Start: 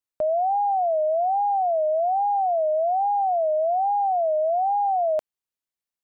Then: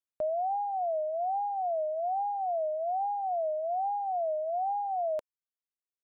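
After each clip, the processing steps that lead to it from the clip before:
reverb reduction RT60 1.6 s
level −7 dB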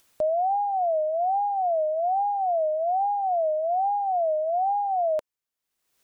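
upward compression, threshold −51 dBFS
level +6.5 dB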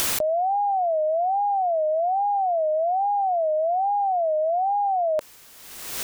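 envelope flattener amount 100%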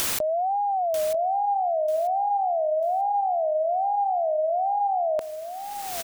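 repeating echo 942 ms, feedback 25%, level −10.5 dB
level −2 dB

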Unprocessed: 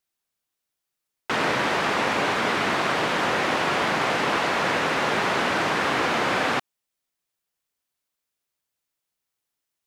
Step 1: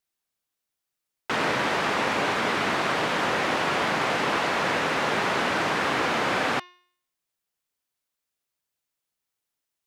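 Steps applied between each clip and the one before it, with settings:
hum removal 357.3 Hz, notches 17
level −1.5 dB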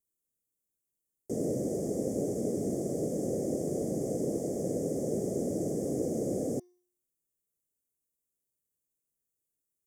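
inverse Chebyshev band-stop filter 900–4,200 Hz, stop band 40 dB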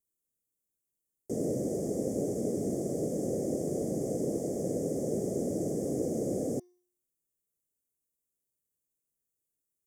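no processing that can be heard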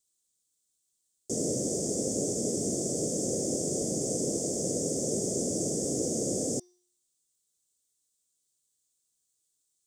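flat-topped bell 5,400 Hz +15.5 dB

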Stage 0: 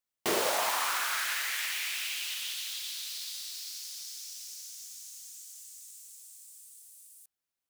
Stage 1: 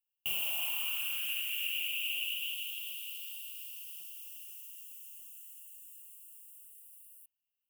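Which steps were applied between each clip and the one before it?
drawn EQ curve 120 Hz 0 dB, 400 Hz −28 dB, 730 Hz −15 dB, 2,000 Hz −22 dB, 2,800 Hz +14 dB, 4,000 Hz −22 dB, 6,300 Hz −15 dB, 9,100 Hz −2 dB, 15,000 Hz +9 dB
level −5 dB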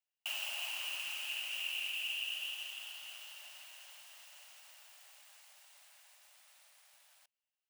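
running median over 3 samples
Chebyshev high-pass with heavy ripple 570 Hz, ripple 3 dB
level −1.5 dB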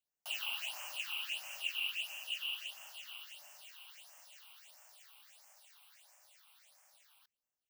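dynamic equaliser 1,100 Hz, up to +3 dB, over −54 dBFS, Q 0.72
all-pass phaser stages 6, 1.5 Hz, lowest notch 470–3,800 Hz
level +1.5 dB

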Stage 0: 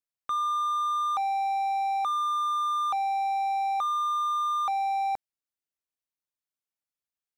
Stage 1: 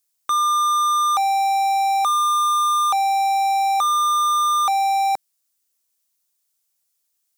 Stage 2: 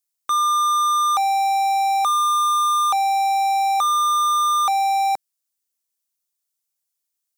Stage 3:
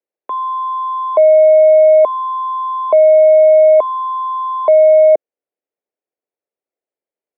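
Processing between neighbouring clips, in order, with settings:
bass and treble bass −6 dB, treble +14 dB; level +8.5 dB
expander for the loud parts 1.5 to 1, over −33 dBFS
single-sideband voice off tune −160 Hz 510–2,500 Hz; low shelf with overshoot 780 Hz +12.5 dB, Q 1.5

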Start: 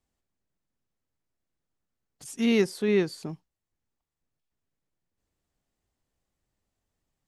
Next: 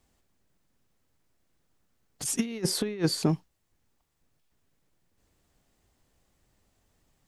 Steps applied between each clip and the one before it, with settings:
compressor whose output falls as the input rises −30 dBFS, ratio −0.5
level +4.5 dB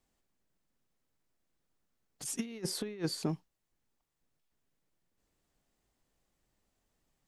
parametric band 82 Hz −6.5 dB 1 octave
level −8 dB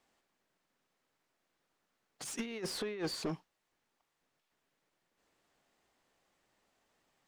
mid-hump overdrive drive 22 dB, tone 2,600 Hz, clips at −20.5 dBFS
level −6 dB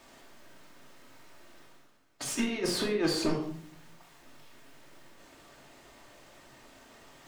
reversed playback
upward compression, threshold −52 dBFS
reversed playback
rectangular room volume 930 cubic metres, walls furnished, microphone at 2.7 metres
level +5.5 dB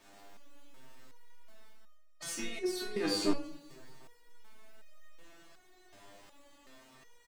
repeating echo 256 ms, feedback 55%, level −20 dB
step-sequenced resonator 2.7 Hz 100–620 Hz
level +7 dB

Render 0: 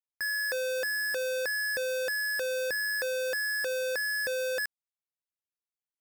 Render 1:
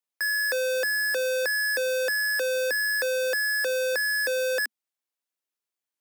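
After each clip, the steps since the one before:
Butterworth high-pass 220 Hz 96 dB per octave
level +5 dB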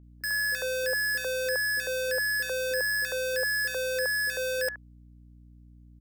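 three-band delay without the direct sound lows, highs, mids 30/100 ms, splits 330/1,400 Hz
mains hum 60 Hz, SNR 22 dB
level −2 dB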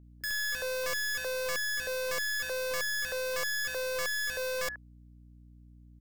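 wavefolder on the positive side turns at −30 dBFS
level −2 dB

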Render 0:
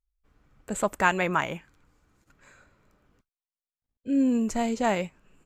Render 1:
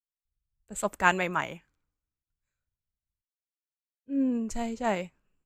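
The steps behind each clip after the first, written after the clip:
multiband upward and downward expander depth 100%
level −5 dB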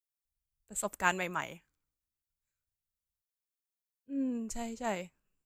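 high-shelf EQ 6,000 Hz +11.5 dB
level −7 dB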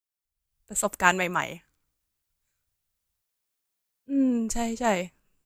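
automatic gain control gain up to 10.5 dB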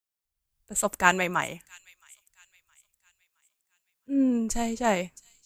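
delay with a high-pass on its return 667 ms, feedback 40%, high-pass 3,500 Hz, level −17 dB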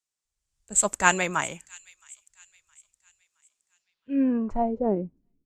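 low-pass filter sweep 7,500 Hz → 290 Hz, 0:03.71–0:05.03

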